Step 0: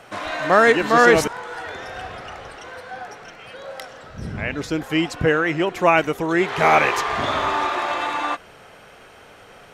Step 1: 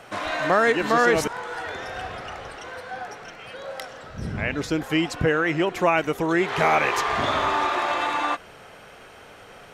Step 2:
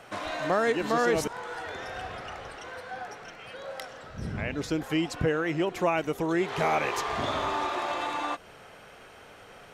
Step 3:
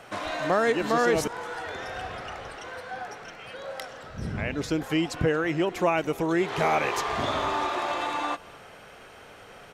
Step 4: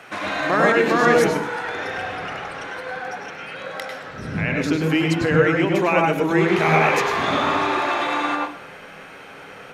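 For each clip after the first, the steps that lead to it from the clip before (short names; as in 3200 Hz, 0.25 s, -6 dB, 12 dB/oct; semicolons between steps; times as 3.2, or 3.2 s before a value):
compressor 2:1, threshold -19 dBFS, peak gain reduction 6 dB
dynamic EQ 1700 Hz, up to -5 dB, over -33 dBFS, Q 0.8; gain -4 dB
echo 0.228 s -23 dB; gain +2 dB
reverb RT60 0.50 s, pre-delay 95 ms, DRR 1 dB; gain +2.5 dB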